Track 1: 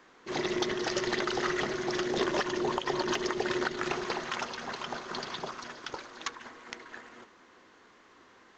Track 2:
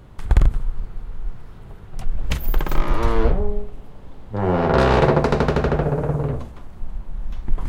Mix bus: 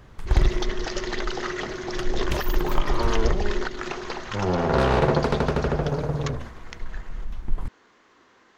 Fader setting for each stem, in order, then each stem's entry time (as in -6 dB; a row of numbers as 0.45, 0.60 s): +0.5, -4.5 dB; 0.00, 0.00 s